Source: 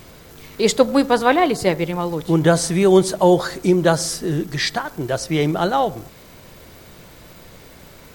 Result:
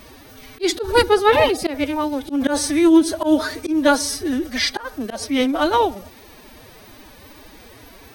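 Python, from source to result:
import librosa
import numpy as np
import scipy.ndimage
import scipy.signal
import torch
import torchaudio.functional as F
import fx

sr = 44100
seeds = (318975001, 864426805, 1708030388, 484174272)

y = fx.pitch_keep_formants(x, sr, semitones=9.5)
y = fx.peak_eq(y, sr, hz=160.0, db=-11.5, octaves=0.68)
y = fx.notch(y, sr, hz=7300.0, q=5.2)
y = fx.auto_swell(y, sr, attack_ms=114.0)
y = y * librosa.db_to_amplitude(2.0)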